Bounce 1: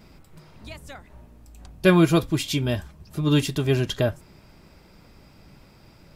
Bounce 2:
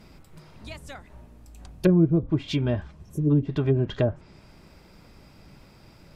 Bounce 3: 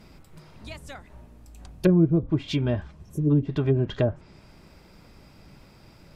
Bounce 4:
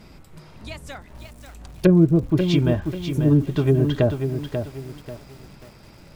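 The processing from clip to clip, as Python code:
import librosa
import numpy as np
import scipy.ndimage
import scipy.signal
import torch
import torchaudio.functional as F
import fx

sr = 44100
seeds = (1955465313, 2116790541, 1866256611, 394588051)

y1 = fx.spec_repair(x, sr, seeds[0], start_s=3.06, length_s=0.22, low_hz=590.0, high_hz=5400.0, source='before')
y1 = fx.env_lowpass_down(y1, sr, base_hz=330.0, full_db=-15.0)
y2 = y1
y3 = fx.echo_crushed(y2, sr, ms=539, feedback_pct=35, bits=8, wet_db=-7.0)
y3 = y3 * 10.0 ** (4.0 / 20.0)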